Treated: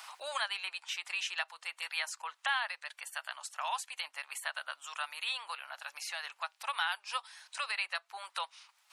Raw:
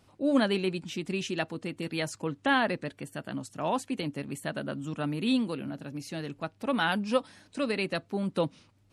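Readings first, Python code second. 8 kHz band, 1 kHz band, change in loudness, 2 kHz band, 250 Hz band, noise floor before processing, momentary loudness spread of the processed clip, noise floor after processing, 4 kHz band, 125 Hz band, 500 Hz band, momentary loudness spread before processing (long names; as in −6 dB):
+1.5 dB, −4.0 dB, −6.0 dB, −1.5 dB, below −40 dB, −64 dBFS, 8 LU, −72 dBFS, 0.0 dB, below −40 dB, −19.5 dB, 12 LU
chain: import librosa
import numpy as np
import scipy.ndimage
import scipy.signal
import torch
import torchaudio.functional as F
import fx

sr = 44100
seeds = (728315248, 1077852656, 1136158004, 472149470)

y = scipy.signal.sosfilt(scipy.signal.butter(6, 860.0, 'highpass', fs=sr, output='sos'), x)
y = fx.band_squash(y, sr, depth_pct=70)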